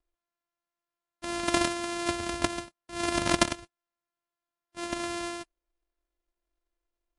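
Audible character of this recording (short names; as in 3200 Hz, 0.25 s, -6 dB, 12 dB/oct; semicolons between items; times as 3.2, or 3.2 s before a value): a buzz of ramps at a fixed pitch in blocks of 128 samples; MP3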